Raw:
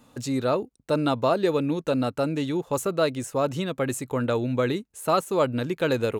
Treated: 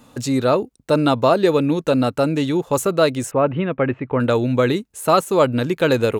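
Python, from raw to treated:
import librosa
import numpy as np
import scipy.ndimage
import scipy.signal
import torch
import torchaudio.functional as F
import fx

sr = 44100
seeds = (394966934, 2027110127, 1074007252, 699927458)

y = fx.steep_lowpass(x, sr, hz=2700.0, slope=36, at=(3.31, 4.2))
y = y * 10.0 ** (7.0 / 20.0)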